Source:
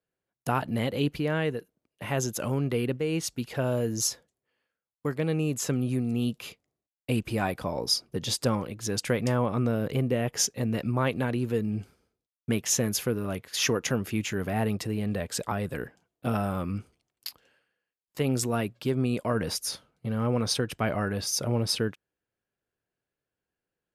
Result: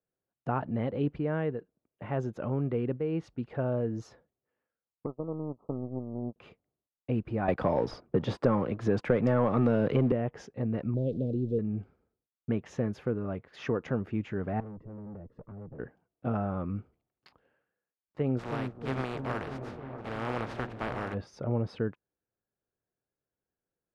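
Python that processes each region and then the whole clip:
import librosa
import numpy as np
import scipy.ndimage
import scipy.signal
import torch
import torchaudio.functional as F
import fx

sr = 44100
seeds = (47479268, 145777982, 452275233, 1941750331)

y = fx.chain(x, sr, fx.power_curve(exponent=2.0),
    fx.cheby1_lowpass(hz=1300.0, order=10),
    fx.peak_eq(hz=380.0, db=3.0, octaves=1.4), at=(5.06, 6.36))
y = fx.chain(y, sr, fx.low_shelf(hz=130.0, db=-8.0),
    fx.leveller(passes=2),
    fx.band_squash(depth_pct=70), at=(7.48, 10.12))
y = fx.chain(y, sr, fx.zero_step(step_db=-35.5),
    fx.ellip_bandstop(low_hz=520.0, high_hz=3600.0, order=3, stop_db=60),
    fx.high_shelf(hz=9200.0, db=3.5), at=(10.94, 11.59))
y = fx.chain(y, sr, fx.moving_average(points=57),
    fx.tube_stage(drive_db=38.0, bias=0.5), at=(14.6, 15.79))
y = fx.spec_flatten(y, sr, power=0.21, at=(18.38, 21.13), fade=0.02)
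y = fx.echo_opening(y, sr, ms=318, hz=400, octaves=1, feedback_pct=70, wet_db=-6, at=(18.38, 21.13), fade=0.02)
y = scipy.signal.sosfilt(scipy.signal.butter(2, 1300.0, 'lowpass', fs=sr, output='sos'), y)
y = fx.notch(y, sr, hz=1000.0, q=26.0)
y = F.gain(torch.from_numpy(y), -2.5).numpy()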